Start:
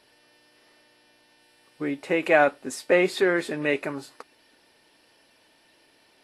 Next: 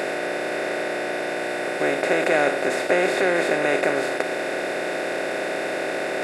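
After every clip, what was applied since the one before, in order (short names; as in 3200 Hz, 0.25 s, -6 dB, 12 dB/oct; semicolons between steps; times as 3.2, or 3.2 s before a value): per-bin compression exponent 0.2; gain -5.5 dB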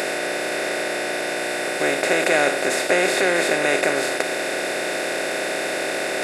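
high shelf 3200 Hz +11.5 dB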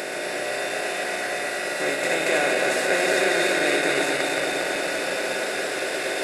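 regenerating reverse delay 0.116 s, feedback 82%, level -3.5 dB; delay with a stepping band-pass 0.251 s, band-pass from 3500 Hz, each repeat -1.4 oct, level -3.5 dB; gain -6 dB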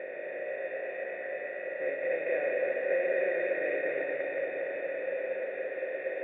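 vocal tract filter e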